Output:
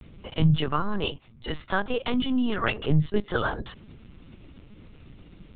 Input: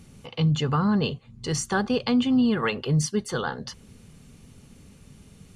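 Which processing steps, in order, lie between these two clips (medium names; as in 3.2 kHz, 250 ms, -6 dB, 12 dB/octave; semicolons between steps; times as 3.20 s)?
0.63–2.80 s: bass shelf 430 Hz -8 dB; LPC vocoder at 8 kHz pitch kept; trim +2 dB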